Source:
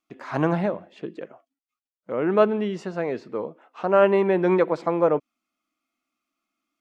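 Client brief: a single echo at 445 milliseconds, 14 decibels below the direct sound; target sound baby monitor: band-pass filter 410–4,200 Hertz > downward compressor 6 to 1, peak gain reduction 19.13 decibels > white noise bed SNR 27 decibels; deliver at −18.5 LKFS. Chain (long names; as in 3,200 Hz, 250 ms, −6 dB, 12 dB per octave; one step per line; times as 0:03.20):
band-pass filter 410–4,200 Hz
single-tap delay 445 ms −14 dB
downward compressor 6 to 1, threshold −34 dBFS
white noise bed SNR 27 dB
level +20 dB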